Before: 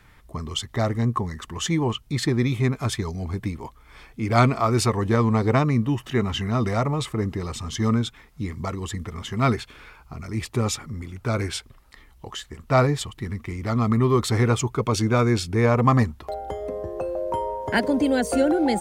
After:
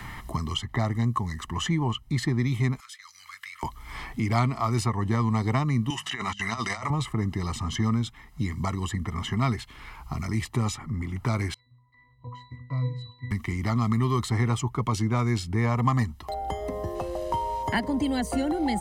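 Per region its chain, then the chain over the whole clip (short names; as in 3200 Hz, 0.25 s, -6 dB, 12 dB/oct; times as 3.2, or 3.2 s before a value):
2.8–3.63 elliptic high-pass 1300 Hz, stop band 50 dB + compressor 2:1, threshold -53 dBFS
5.9–6.9 weighting filter ITU-R 468 + negative-ratio compressor -30 dBFS, ratio -0.5 + de-hum 50.75 Hz, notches 4
11.54–13.31 bell 230 Hz -8 dB 0.75 oct + octave resonator B, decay 0.43 s
16.95–17.63 CVSD 64 kbps + LPF 2400 Hz 6 dB/oct + backlash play -50 dBFS
whole clip: comb 1 ms, depth 59%; three-band squash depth 70%; gain -5.5 dB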